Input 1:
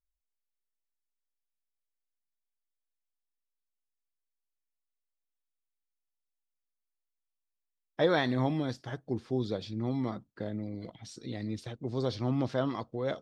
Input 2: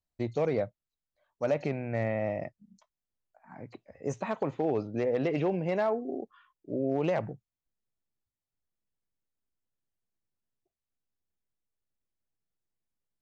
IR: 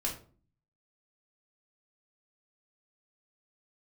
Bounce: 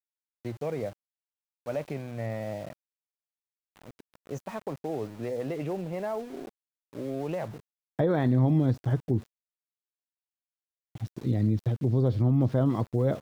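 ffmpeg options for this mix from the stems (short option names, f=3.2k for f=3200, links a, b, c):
-filter_complex "[0:a]tiltshelf=f=930:g=7,acrossover=split=3200[a][b];[b]acompressor=threshold=-58dB:ratio=4:attack=1:release=60[c];[a][c]amix=inputs=2:normalize=0,volume=2.5dB,asplit=3[d][e][f];[d]atrim=end=9.28,asetpts=PTS-STARTPTS,afade=t=out:st=9.276:d=0.004:c=hsin[g];[e]atrim=start=9.28:end=10.95,asetpts=PTS-STARTPTS,volume=0[h];[f]atrim=start=10.95,asetpts=PTS-STARTPTS,afade=t=in:d=0.004:c=hsin[i];[g][h][i]concat=n=3:v=0:a=1[j];[1:a]lowshelf=f=160:g=-5.5,adynamicequalizer=threshold=0.00562:dfrequency=1500:dqfactor=0.7:tfrequency=1500:tqfactor=0.7:attack=5:release=100:ratio=0.375:range=2.5:mode=cutabove:tftype=highshelf,adelay=250,volume=-4dB[k];[j][k]amix=inputs=2:normalize=0,equalizer=f=110:t=o:w=1.4:g=7,aeval=exprs='val(0)*gte(abs(val(0)),0.00596)':c=same,alimiter=limit=-16dB:level=0:latency=1:release=134"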